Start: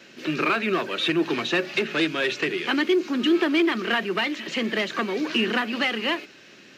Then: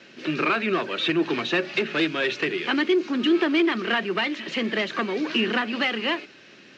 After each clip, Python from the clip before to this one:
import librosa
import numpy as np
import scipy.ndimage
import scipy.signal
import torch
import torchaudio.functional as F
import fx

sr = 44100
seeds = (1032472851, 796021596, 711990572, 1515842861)

y = scipy.signal.sosfilt(scipy.signal.butter(2, 5500.0, 'lowpass', fs=sr, output='sos'), x)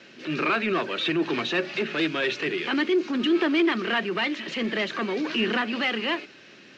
y = fx.transient(x, sr, attack_db=-6, sustain_db=0)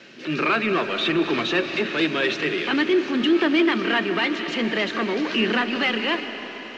y = fx.rev_freeverb(x, sr, rt60_s=4.9, hf_ratio=0.9, predelay_ms=110, drr_db=8.5)
y = y * librosa.db_to_amplitude(3.0)